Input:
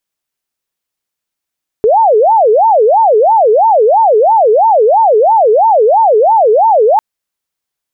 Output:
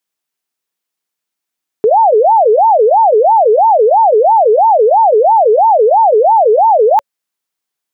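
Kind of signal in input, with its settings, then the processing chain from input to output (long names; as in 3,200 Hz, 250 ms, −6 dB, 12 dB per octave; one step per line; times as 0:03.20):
siren wail 419–911 Hz 3 per second sine −4.5 dBFS 5.15 s
high-pass filter 160 Hz
notch filter 560 Hz, Q 12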